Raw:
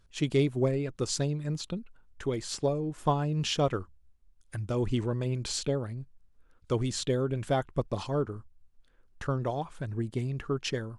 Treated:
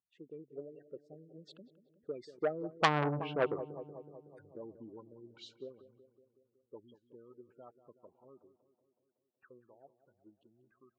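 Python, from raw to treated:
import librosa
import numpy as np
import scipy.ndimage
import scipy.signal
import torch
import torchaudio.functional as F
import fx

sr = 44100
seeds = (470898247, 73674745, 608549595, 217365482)

p1 = fx.doppler_pass(x, sr, speed_mps=27, closest_m=2.0, pass_at_s=2.99)
p2 = fx.spec_gate(p1, sr, threshold_db=-20, keep='strong')
p3 = fx.dynamic_eq(p2, sr, hz=390.0, q=7.5, threshold_db=-58.0, ratio=4.0, max_db=3)
p4 = fx.filter_lfo_lowpass(p3, sr, shape='sine', hz=2.8, low_hz=370.0, high_hz=3600.0, q=3.4)
p5 = fx.high_shelf(p4, sr, hz=7900.0, db=10.0)
p6 = fx.env_lowpass_down(p5, sr, base_hz=960.0, full_db=-36.0)
p7 = scipy.signal.sosfilt(scipy.signal.butter(2, 240.0, 'highpass', fs=sr, output='sos'), p6)
p8 = p7 + fx.echo_filtered(p7, sr, ms=186, feedback_pct=66, hz=1700.0, wet_db=-14.0, dry=0)
p9 = fx.transformer_sat(p8, sr, knee_hz=2500.0)
y = F.gain(torch.from_numpy(p9), 8.0).numpy()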